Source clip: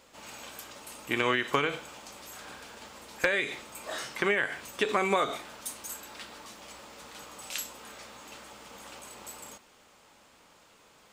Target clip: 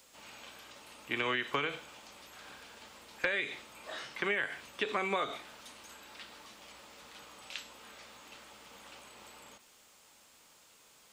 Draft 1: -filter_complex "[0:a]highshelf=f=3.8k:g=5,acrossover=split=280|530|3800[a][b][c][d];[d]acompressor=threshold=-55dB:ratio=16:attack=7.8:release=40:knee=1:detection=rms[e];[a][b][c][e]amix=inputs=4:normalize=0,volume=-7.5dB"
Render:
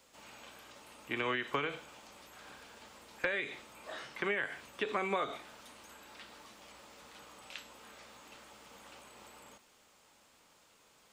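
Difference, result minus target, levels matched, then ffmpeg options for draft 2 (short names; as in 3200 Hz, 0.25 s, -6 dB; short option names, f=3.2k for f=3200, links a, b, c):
4000 Hz band -3.0 dB
-filter_complex "[0:a]highshelf=f=3.8k:g=16.5,acrossover=split=280|530|3800[a][b][c][d];[d]acompressor=threshold=-55dB:ratio=16:attack=7.8:release=40:knee=1:detection=rms[e];[a][b][c][e]amix=inputs=4:normalize=0,volume=-7.5dB"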